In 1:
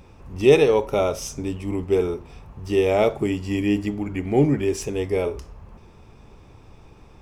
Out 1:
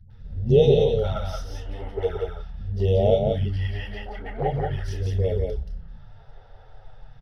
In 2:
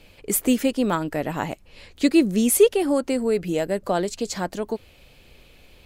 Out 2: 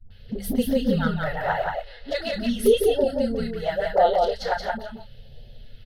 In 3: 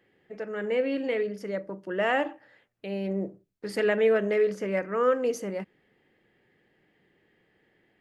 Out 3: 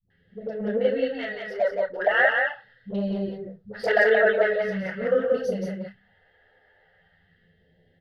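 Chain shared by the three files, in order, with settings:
treble shelf 2.6 kHz -10.5 dB; hum notches 50/100/150/200/250 Hz; phase dispersion highs, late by 106 ms, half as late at 390 Hz; phase shifter stages 2, 0.42 Hz, lowest notch 160–1200 Hz; treble shelf 6.4 kHz -9 dB; static phaser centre 1.6 kHz, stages 8; doubling 30 ms -7 dB; touch-sensitive flanger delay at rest 11.7 ms, full sweep at -24.5 dBFS; delay 177 ms -3.5 dB; normalise loudness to -24 LUFS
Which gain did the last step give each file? +7.5 dB, +11.0 dB, +14.5 dB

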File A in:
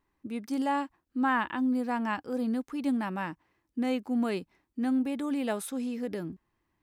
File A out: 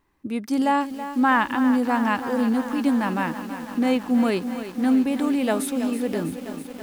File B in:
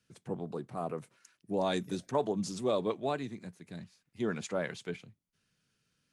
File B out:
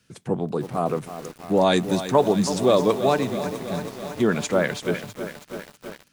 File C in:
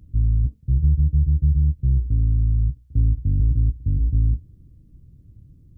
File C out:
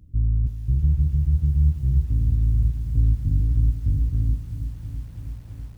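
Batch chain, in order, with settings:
bit-crushed delay 326 ms, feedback 80%, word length 8-bit, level -11 dB; normalise loudness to -23 LUFS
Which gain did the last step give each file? +8.0 dB, +12.5 dB, -2.0 dB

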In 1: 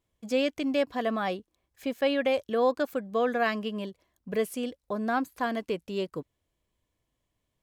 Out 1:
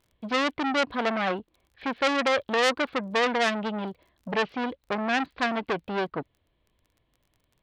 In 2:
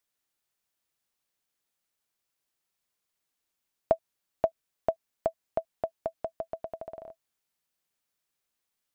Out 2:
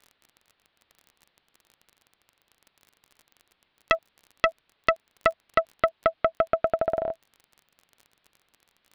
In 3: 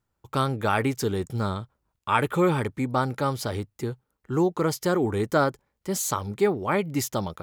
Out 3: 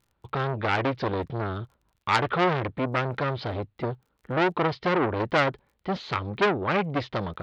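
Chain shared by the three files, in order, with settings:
steep low-pass 4.1 kHz 48 dB/octave; crackle 28 per s -56 dBFS; transformer saturation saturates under 3.2 kHz; normalise loudness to -27 LUFS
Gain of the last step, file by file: +7.5 dB, +17.5 dB, +5.0 dB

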